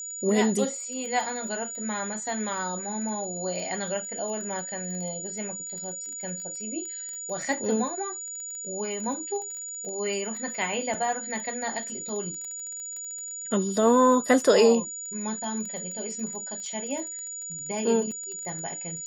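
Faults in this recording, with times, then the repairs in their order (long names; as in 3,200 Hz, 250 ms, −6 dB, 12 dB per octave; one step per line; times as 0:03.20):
surface crackle 21 per second −35 dBFS
whistle 6,900 Hz −34 dBFS
0:10.94: drop-out 4.3 ms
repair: click removal
notch filter 6,900 Hz, Q 30
repair the gap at 0:10.94, 4.3 ms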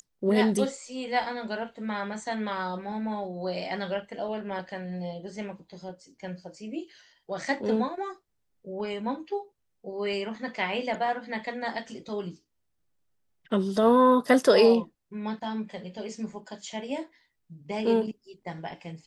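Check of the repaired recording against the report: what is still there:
none of them is left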